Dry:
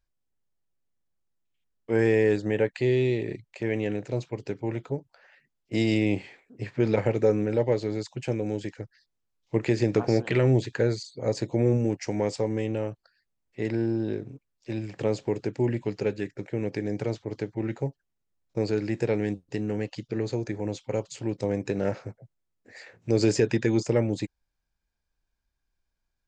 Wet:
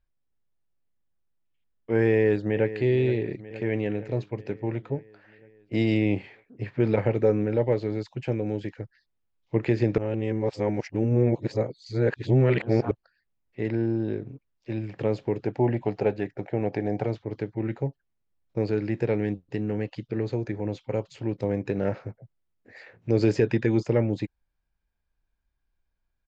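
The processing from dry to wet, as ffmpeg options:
-filter_complex "[0:a]asplit=2[s0][s1];[s1]afade=t=in:st=2.09:d=0.01,afade=t=out:st=2.74:d=0.01,aecho=0:1:470|940|1410|1880|2350|2820|3290|3760:0.211349|0.137377|0.0892949|0.0580417|0.0377271|0.0245226|0.0159397|0.0103608[s2];[s0][s2]amix=inputs=2:normalize=0,asettb=1/sr,asplit=3[s3][s4][s5];[s3]atrim=end=15.474[s6];[s4]atrim=start=15.47:end=17.06,asetpts=PTS-STARTPTS,afade=t=in:d=0.004:c=qsin,afade=t=out:st=1.586:d=0.004:c=qsin,equalizer=f=740:w=2.1:g=13[s7];[s5]atrim=start=17.056[s8];[s6][s7]acrossfade=d=0.004:c1=hsin:c2=qsin[s9];[s9][s8]acrossfade=d=0.004:c1=qsin:c2=hsin,asplit=3[s10][s11][s12];[s10]atrim=end=9.982[s13];[s11]atrim=start=9.978:end=12.912,asetpts=PTS-STARTPTS,areverse[s14];[s12]atrim=start=12.908[s15];[s13][s14]acrossfade=d=0.004:c1=hsin:c2=hsin[s16];[s16][s15]acrossfade=d=0.004:c1=hsin:c2=hsin,lowpass=3300,lowshelf=f=130:g=3.5"

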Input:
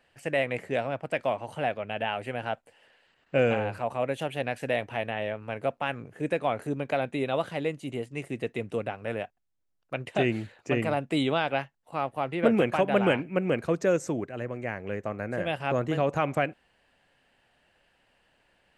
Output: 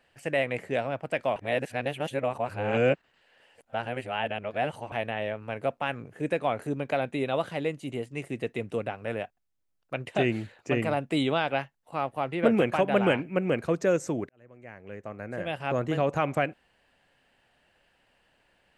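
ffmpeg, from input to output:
-filter_complex "[0:a]asplit=4[s0][s1][s2][s3];[s0]atrim=end=1.362[s4];[s1]atrim=start=1.358:end=4.922,asetpts=PTS-STARTPTS,areverse[s5];[s2]atrim=start=4.918:end=14.29,asetpts=PTS-STARTPTS,afade=t=out:st=9.368:d=0.004:c=hsin[s6];[s3]atrim=start=14.29,asetpts=PTS-STARTPTS,afade=t=in:d=1.63[s7];[s4][s5]acrossfade=d=0.004:c1=hsin:c2=hsin[s8];[s6][s7]concat=n=2:v=0:a=1[s9];[s8][s9]acrossfade=d=0.004:c1=hsin:c2=hsin"

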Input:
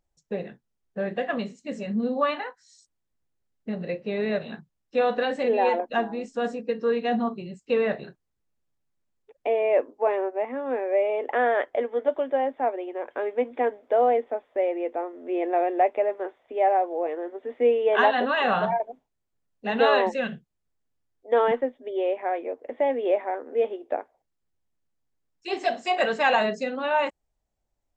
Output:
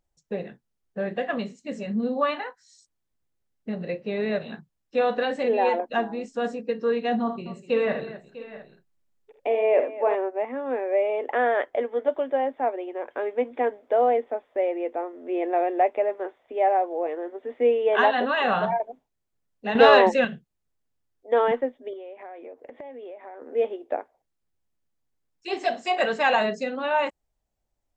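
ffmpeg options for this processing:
-filter_complex "[0:a]asettb=1/sr,asplit=3[s0][s1][s2];[s0]atrim=end=7.214[s3];[s1]atrim=start=7.21:end=10.15,asetpts=PTS-STARTPTS,afade=t=in:d=0.004:c=qsin,afade=t=out:st=2.936:d=0.004:c=qsin,aecho=1:1:48|78|247|648|700:0.282|0.355|0.188|0.15|0.126,atrim=end_sample=129654[s4];[s2]atrim=start=10.146[s5];[s3][s4]acrossfade=d=0.004:c1=hsin:c2=qsin[s6];[s6][s5]acrossfade=d=0.004:c1=qsin:c2=hsin,asettb=1/sr,asplit=3[s7][s8][s9];[s7]atrim=end=19.754[s10];[s8]atrim=start=19.75:end=20.25,asetpts=PTS-STARTPTS,afade=t=in:d=0.004:c=qsin,afade=t=out:st=0.496:d=0.004:c=qsin,acontrast=60[s11];[s9]atrim=start=20.246[s12];[s10][s11]acrossfade=d=0.004:c1=hsin:c2=qsin[s13];[s13][s12]acrossfade=d=0.004:c1=qsin:c2=hsin,asettb=1/sr,asplit=3[s14][s15][s16];[s14]atrim=end=21.934[s17];[s15]atrim=start=21.93:end=23.42,asetpts=PTS-STARTPTS,afade=t=in:d=0.004:c=qsin,afade=t=out:st=1.486:d=0.004:c=qsin,acompressor=threshold=0.0141:ratio=10:attack=3.2:release=140:knee=1:detection=peak[s18];[s16]atrim=start=23.416[s19];[s17][s18]acrossfade=d=0.004:c1=hsin:c2=qsin[s20];[s20][s19]acrossfade=d=0.004:c1=qsin:c2=hsin"

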